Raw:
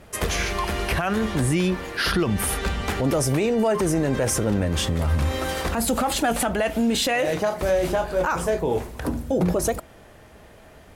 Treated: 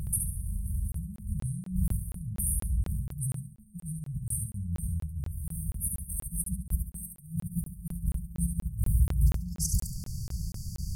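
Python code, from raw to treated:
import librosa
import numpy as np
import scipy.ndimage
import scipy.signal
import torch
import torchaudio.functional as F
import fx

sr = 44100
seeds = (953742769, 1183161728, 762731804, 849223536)

y = fx.high_shelf(x, sr, hz=5700.0, db=-4.5)
y = fx.over_compress(y, sr, threshold_db=-35.0, ratio=-1.0)
y = fx.brickwall_bandstop(y, sr, low_hz=190.0, high_hz=fx.steps((0.0, 8400.0), (9.26, 4400.0)))
y = fx.echo_feedback(y, sr, ms=70, feedback_pct=35, wet_db=-5)
y = fx.buffer_crackle(y, sr, first_s=0.92, period_s=0.24, block=1024, kind='zero')
y = F.gain(torch.from_numpy(y), 6.5).numpy()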